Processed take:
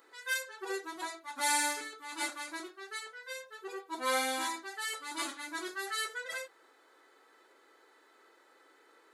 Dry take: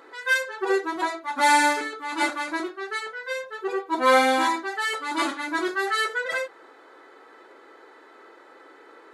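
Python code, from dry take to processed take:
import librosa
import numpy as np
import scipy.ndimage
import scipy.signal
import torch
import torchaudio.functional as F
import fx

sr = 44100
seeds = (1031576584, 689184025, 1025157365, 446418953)

y = librosa.effects.preemphasis(x, coef=0.8, zi=[0.0])
y = y * 10.0 ** (-1.5 / 20.0)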